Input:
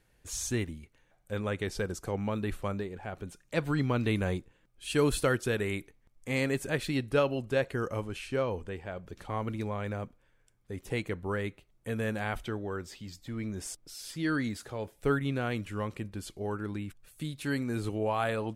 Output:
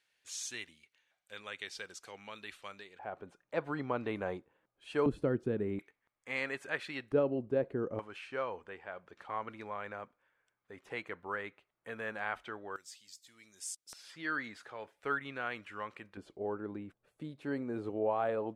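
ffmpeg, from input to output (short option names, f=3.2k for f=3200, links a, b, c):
-af "asetnsamples=n=441:p=0,asendcmd='2.99 bandpass f 800;5.06 bandpass f 260;5.79 bandpass f 1500;7.12 bandpass f 330;7.99 bandpass f 1300;12.76 bandpass f 7500;13.93 bandpass f 1500;16.17 bandpass f 540',bandpass=f=3.4k:t=q:w=0.96:csg=0"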